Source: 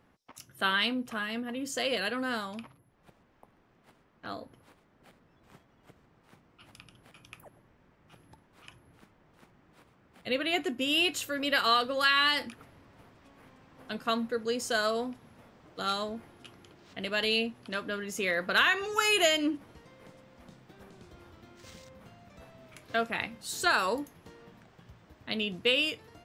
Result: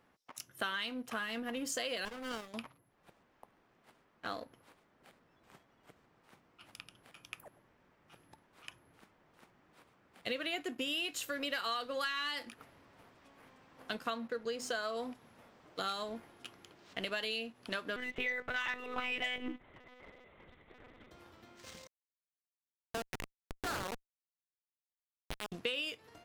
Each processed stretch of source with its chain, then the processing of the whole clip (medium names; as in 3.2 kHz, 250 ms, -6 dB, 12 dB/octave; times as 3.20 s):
2.05–2.54 s: bass shelf 450 Hz -11.5 dB + static phaser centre 2.4 kHz, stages 4 + sliding maximum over 17 samples
14.10–14.97 s: treble shelf 7.7 kHz -12 dB + hum notches 50/100/150/200/250/300/350 Hz
17.96–21.11 s: peaking EQ 2 kHz +11 dB 0.2 oct + band-stop 1.7 kHz, Q 11 + monotone LPC vocoder at 8 kHz 250 Hz
21.87–25.52 s: Schmitt trigger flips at -25 dBFS + loudspeaker Doppler distortion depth 0.21 ms
whole clip: bass shelf 240 Hz -9 dB; waveshaping leveller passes 1; compression 6:1, threshold -35 dBFS